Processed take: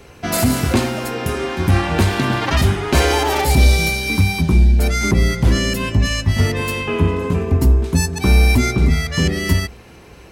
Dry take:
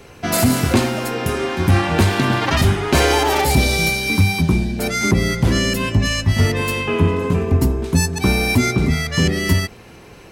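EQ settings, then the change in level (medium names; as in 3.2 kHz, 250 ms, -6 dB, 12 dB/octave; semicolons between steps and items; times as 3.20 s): peaking EQ 61 Hz +15 dB 0.2 oct; -1.0 dB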